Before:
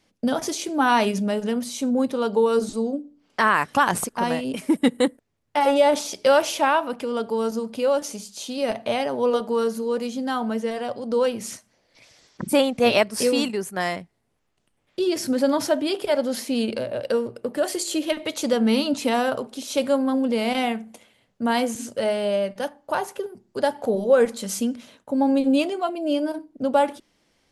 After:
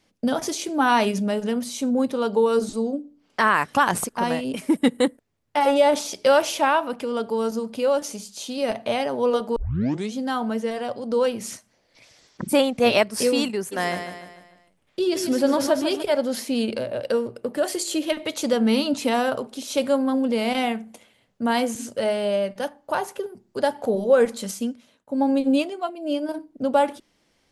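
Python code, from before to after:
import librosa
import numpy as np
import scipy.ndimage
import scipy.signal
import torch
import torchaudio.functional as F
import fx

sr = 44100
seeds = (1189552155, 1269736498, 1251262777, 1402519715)

y = fx.echo_feedback(x, sr, ms=148, feedback_pct=47, wet_db=-8, at=(13.71, 16.02), fade=0.02)
y = fx.upward_expand(y, sr, threshold_db=-37.0, expansion=1.5, at=(24.51, 26.29))
y = fx.edit(y, sr, fx.tape_start(start_s=9.56, length_s=0.57), tone=tone)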